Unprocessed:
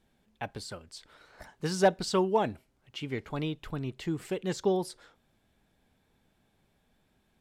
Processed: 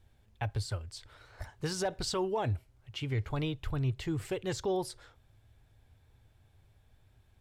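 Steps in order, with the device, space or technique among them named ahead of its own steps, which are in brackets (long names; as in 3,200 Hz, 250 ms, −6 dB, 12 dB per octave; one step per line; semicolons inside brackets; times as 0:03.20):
car stereo with a boomy subwoofer (low shelf with overshoot 140 Hz +9.5 dB, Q 3; brickwall limiter −24 dBFS, peak gain reduction 10.5 dB)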